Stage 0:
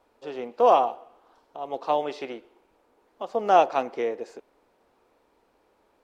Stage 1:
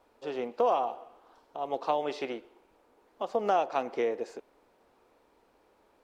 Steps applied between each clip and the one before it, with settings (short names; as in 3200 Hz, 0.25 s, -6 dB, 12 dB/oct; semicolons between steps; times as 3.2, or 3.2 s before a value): compressor 4:1, threshold -24 dBFS, peak gain reduction 10 dB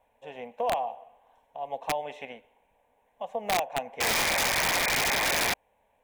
painted sound noise, 4–5.54, 370–2500 Hz -23 dBFS; fixed phaser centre 1300 Hz, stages 6; wrapped overs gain 19.5 dB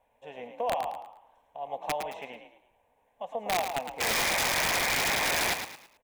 frequency-shifting echo 0.109 s, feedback 35%, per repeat +43 Hz, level -7.5 dB; gain -2 dB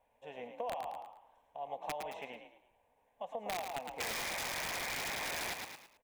compressor, threshold -32 dBFS, peak gain reduction 7.5 dB; gain -4 dB